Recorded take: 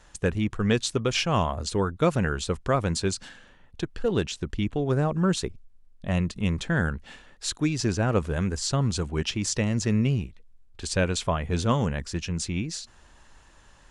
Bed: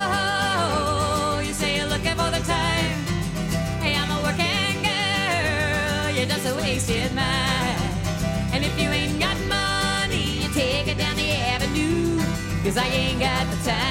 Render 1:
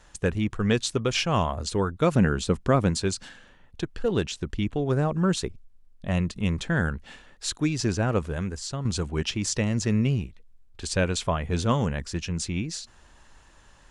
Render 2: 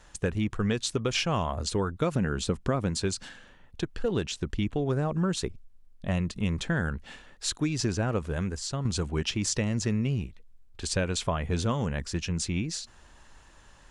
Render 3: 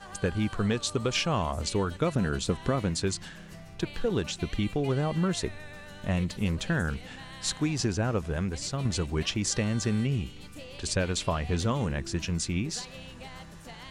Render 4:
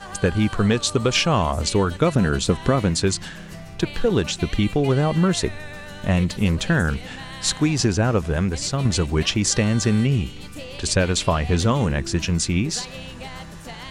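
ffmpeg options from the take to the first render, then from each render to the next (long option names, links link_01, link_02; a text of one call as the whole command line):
ffmpeg -i in.wav -filter_complex "[0:a]asettb=1/sr,asplit=3[link_01][link_02][link_03];[link_01]atrim=end=2.114[link_04];[link_02]atrim=start=2.11:end=2.9,asetpts=PTS-STARTPTS,afade=type=in:duration=0.004:curve=qsin,afade=type=out:start_time=0.786:duration=0.004:curve=qsin,equalizer=frequency=220:width=0.87:gain=7.5[link_05];[link_03]atrim=start=2.896[link_06];[link_04][link_05]acrossfade=duration=0.004:curve1=hsin:curve2=qsin[link_07];[link_07][link_06]acrossfade=duration=0.004:curve1=qsin:curve2=hsin,asplit=2[link_08][link_09];[link_08]atrim=end=8.85,asetpts=PTS-STARTPTS,afade=type=out:start_time=7.98:duration=0.87:silence=0.375837[link_10];[link_09]atrim=start=8.85,asetpts=PTS-STARTPTS,afade=type=in:duration=0.004:curve=hsin:silence=0.375837[link_11];[link_10][link_11]concat=n=2:v=0:a=1" out.wav
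ffmpeg -i in.wav -af "acompressor=threshold=-23dB:ratio=6" out.wav
ffmpeg -i in.wav -i bed.wav -filter_complex "[1:a]volume=-22.5dB[link_01];[0:a][link_01]amix=inputs=2:normalize=0" out.wav
ffmpeg -i in.wav -af "volume=8.5dB" out.wav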